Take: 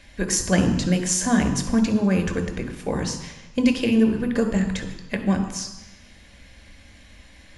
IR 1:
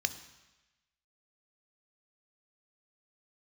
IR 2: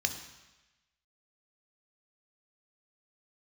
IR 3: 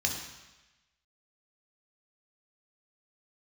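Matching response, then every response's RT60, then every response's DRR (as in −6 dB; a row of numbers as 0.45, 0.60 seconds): 2; 1.1, 1.1, 1.1 seconds; 10.5, 6.0, 0.5 decibels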